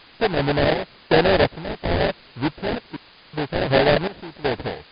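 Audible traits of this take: aliases and images of a low sample rate 1.2 kHz, jitter 20%; random-step tremolo 2.7 Hz, depth 100%; a quantiser's noise floor 8-bit, dither triangular; MP3

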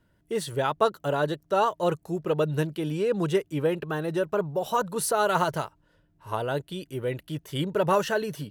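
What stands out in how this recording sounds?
noise floor -67 dBFS; spectral tilt -5.0 dB/octave

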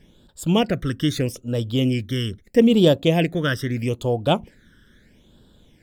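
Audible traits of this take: phasing stages 12, 0.78 Hz, lowest notch 750–2100 Hz

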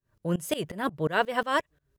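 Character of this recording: tremolo saw up 5.6 Hz, depth 95%

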